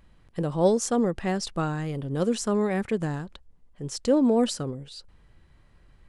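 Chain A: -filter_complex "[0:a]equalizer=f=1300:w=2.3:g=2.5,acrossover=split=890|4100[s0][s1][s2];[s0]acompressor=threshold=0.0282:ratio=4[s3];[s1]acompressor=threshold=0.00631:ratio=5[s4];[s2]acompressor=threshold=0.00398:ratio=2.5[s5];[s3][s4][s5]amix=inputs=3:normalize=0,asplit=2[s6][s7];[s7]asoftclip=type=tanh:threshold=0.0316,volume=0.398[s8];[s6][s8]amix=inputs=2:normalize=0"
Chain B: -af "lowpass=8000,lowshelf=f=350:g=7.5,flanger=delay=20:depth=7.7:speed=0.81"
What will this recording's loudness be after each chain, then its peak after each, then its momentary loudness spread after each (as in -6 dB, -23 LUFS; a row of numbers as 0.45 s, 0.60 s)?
-32.5 LUFS, -25.0 LUFS; -19.0 dBFS, -8.0 dBFS; 9 LU, 13 LU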